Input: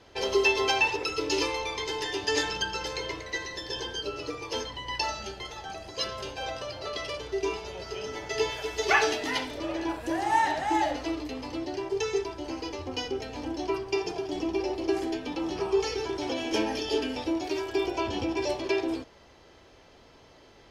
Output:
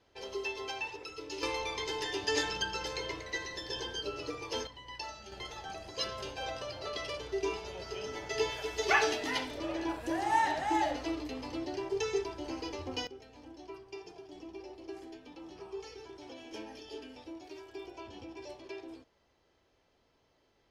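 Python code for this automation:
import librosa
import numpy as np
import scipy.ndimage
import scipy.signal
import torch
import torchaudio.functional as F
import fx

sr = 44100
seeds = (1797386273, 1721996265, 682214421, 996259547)

y = fx.gain(x, sr, db=fx.steps((0.0, -14.0), (1.43, -4.0), (4.67, -12.0), (5.32, -4.0), (13.07, -17.0)))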